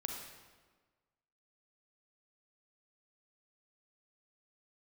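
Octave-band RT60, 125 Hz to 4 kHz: 1.5 s, 1.5 s, 1.5 s, 1.4 s, 1.2 s, 1.0 s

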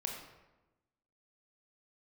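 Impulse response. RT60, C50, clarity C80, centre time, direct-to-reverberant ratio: 1.1 s, 3.5 dB, 6.0 dB, 42 ms, 0.5 dB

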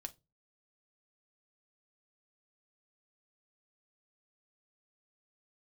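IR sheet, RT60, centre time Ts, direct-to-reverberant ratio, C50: no single decay rate, 4 ms, 6.0 dB, 22.0 dB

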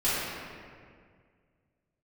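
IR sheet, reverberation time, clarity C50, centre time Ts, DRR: 2.0 s, -4.0 dB, 147 ms, -14.0 dB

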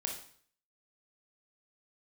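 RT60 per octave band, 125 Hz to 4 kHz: 0.60 s, 0.55 s, 0.55 s, 0.55 s, 0.55 s, 0.55 s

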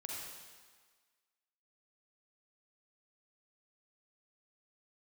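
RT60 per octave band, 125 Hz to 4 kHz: 1.3 s, 1.4 s, 1.5 s, 1.6 s, 1.5 s, 1.5 s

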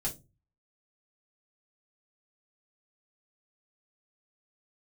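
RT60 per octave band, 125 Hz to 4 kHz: 0.60 s, 0.40 s, 0.30 s, 0.20 s, 0.15 s, 0.20 s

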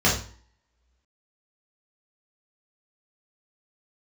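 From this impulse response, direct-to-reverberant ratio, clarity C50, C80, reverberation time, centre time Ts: -6.5 dB, 5.5 dB, 11.0 dB, 0.45 s, 31 ms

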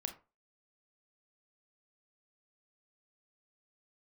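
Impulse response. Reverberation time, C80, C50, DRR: 0.30 s, 18.0 dB, 12.0 dB, 6.0 dB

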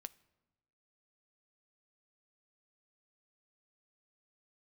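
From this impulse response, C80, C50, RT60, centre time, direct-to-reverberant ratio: 24.0 dB, 21.5 dB, 1.1 s, 2 ms, 14.5 dB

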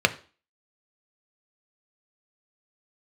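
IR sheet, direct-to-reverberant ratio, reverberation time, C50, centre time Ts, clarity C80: 7.5 dB, 0.40 s, 18.0 dB, 4 ms, 22.0 dB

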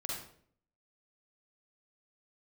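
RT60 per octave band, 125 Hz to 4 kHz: 0.75 s, 0.70 s, 0.65 s, 0.50 s, 0.50 s, 0.45 s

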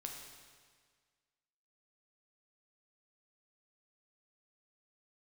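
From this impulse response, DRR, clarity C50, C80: 1.0 dB, 3.5 dB, 5.0 dB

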